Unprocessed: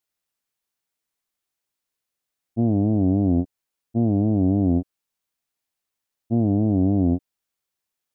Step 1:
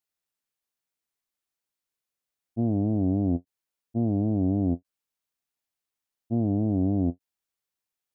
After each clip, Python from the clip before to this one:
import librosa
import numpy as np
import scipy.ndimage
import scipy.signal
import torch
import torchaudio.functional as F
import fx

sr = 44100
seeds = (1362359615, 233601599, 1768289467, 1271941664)

y = fx.end_taper(x, sr, db_per_s=590.0)
y = F.gain(torch.from_numpy(y), -5.0).numpy()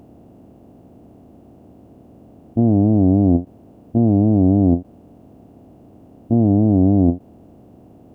y = fx.bin_compress(x, sr, power=0.4)
y = F.gain(torch.from_numpy(y), 9.0).numpy()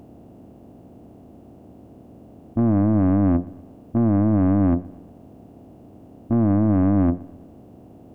y = 10.0 ** (-13.5 / 20.0) * np.tanh(x / 10.0 ** (-13.5 / 20.0))
y = fx.echo_feedback(y, sr, ms=121, feedback_pct=51, wet_db=-21.5)